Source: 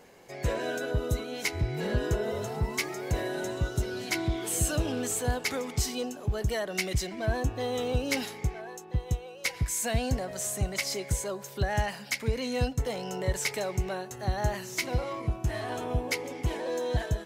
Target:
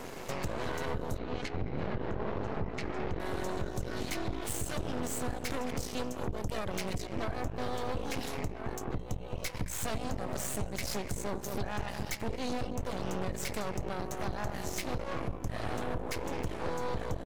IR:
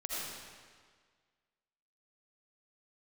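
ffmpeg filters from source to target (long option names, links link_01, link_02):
-filter_complex "[0:a]alimiter=limit=-23.5dB:level=0:latency=1:release=216,lowshelf=frequency=420:gain=7.5,bandreject=frequency=60:width_type=h:width=6,bandreject=frequency=120:width_type=h:width=6,bandreject=frequency=180:width_type=h:width=6,bandreject=frequency=240:width_type=h:width=6,bandreject=frequency=300:width_type=h:width=6,bandreject=frequency=360:width_type=h:width=6,asplit=2[link_01][link_02];[link_02]adelay=216,lowpass=frequency=1000:poles=1,volume=-8.5dB,asplit=2[link_03][link_04];[link_04]adelay=216,lowpass=frequency=1000:poles=1,volume=0.51,asplit=2[link_05][link_06];[link_06]adelay=216,lowpass=frequency=1000:poles=1,volume=0.51,asplit=2[link_07][link_08];[link_08]adelay=216,lowpass=frequency=1000:poles=1,volume=0.51,asplit=2[link_09][link_10];[link_10]adelay=216,lowpass=frequency=1000:poles=1,volume=0.51,asplit=2[link_11][link_12];[link_12]adelay=216,lowpass=frequency=1000:poles=1,volume=0.51[link_13];[link_01][link_03][link_05][link_07][link_09][link_11][link_13]amix=inputs=7:normalize=0,acompressor=threshold=-47dB:ratio=4,asettb=1/sr,asplit=3[link_14][link_15][link_16];[link_14]atrim=end=1.184[link_17];[link_15]atrim=start=1.18:end=3.2,asetpts=PTS-STARTPTS,afade=type=in:duration=0.004:curve=qsin,afade=type=out:start_time=2.016:duration=0.004:curve=qsin,lowpass=2800[link_18];[link_16]atrim=start=3.196[link_19];[link_17][link_18]acrossfade=duration=0.004:curve1=hsin:curve2=qsin[link_20];[link_20][link_19]acrossfade=duration=0.004:curve1=qsin:curve2=hsin,aeval=exprs='0.0211*(cos(1*acos(clip(val(0)/0.0211,-1,1)))-cos(1*PI/2))+0.0075*(cos(6*acos(clip(val(0)/0.0211,-1,1)))-cos(6*PI/2))':channel_layout=same,volume=7.5dB"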